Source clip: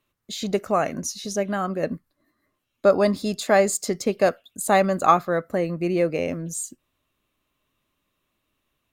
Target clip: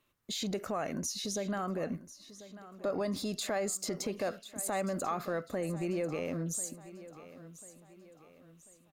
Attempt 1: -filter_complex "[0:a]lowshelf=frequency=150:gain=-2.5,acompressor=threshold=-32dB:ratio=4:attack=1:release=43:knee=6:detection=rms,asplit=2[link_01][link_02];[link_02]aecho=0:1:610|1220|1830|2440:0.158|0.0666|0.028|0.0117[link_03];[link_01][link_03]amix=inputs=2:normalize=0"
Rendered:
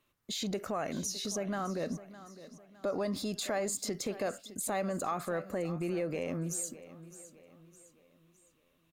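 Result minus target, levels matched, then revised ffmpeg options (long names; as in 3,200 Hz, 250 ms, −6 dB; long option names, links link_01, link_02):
echo 432 ms early
-filter_complex "[0:a]lowshelf=frequency=150:gain=-2.5,acompressor=threshold=-32dB:ratio=4:attack=1:release=43:knee=6:detection=rms,asplit=2[link_01][link_02];[link_02]aecho=0:1:1042|2084|3126|4168:0.158|0.0666|0.028|0.0117[link_03];[link_01][link_03]amix=inputs=2:normalize=0"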